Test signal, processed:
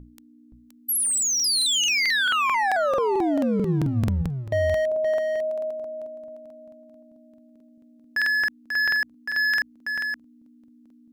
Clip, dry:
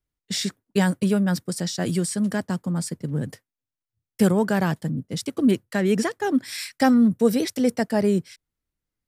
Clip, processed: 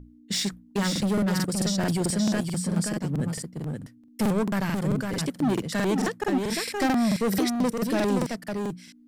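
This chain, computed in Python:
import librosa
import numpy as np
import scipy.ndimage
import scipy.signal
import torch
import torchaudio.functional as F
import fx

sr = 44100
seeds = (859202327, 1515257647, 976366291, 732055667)

p1 = np.clip(10.0 ** (21.0 / 20.0) * x, -1.0, 1.0) / 10.0 ** (21.0 / 20.0)
p2 = fx.add_hum(p1, sr, base_hz=60, snr_db=15)
p3 = fx.hum_notches(p2, sr, base_hz=60, count=3)
p4 = p3 + fx.echo_single(p3, sr, ms=522, db=-5.0, dry=0)
y = fx.buffer_crackle(p4, sr, first_s=0.91, period_s=0.22, block=2048, kind='repeat')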